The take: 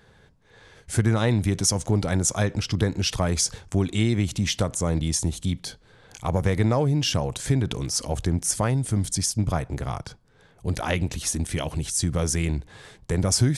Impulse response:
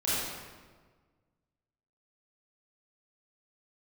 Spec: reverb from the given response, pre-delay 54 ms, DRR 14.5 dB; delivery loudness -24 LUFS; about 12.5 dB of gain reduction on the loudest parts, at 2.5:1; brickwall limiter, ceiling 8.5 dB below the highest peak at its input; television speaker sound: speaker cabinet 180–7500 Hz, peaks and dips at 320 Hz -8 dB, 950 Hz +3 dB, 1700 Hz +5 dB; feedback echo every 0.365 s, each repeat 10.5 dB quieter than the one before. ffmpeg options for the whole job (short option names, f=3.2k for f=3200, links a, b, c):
-filter_complex "[0:a]acompressor=threshold=-36dB:ratio=2.5,alimiter=level_in=1.5dB:limit=-24dB:level=0:latency=1,volume=-1.5dB,aecho=1:1:365|730|1095:0.299|0.0896|0.0269,asplit=2[a][b];[1:a]atrim=start_sample=2205,adelay=54[c];[b][c]afir=irnorm=-1:irlink=0,volume=-24dB[d];[a][d]amix=inputs=2:normalize=0,highpass=f=180:w=0.5412,highpass=f=180:w=1.3066,equalizer=f=320:t=q:w=4:g=-8,equalizer=f=950:t=q:w=4:g=3,equalizer=f=1.7k:t=q:w=4:g=5,lowpass=f=7.5k:w=0.5412,lowpass=f=7.5k:w=1.3066,volume=16dB"